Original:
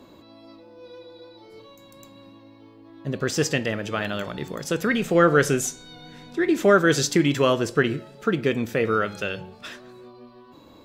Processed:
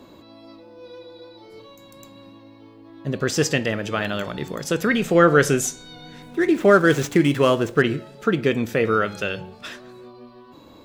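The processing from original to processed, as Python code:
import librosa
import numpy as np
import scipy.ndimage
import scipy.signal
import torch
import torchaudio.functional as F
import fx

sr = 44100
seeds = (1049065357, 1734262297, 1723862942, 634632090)

y = fx.median_filter(x, sr, points=9, at=(6.22, 7.82))
y = y * 10.0 ** (2.5 / 20.0)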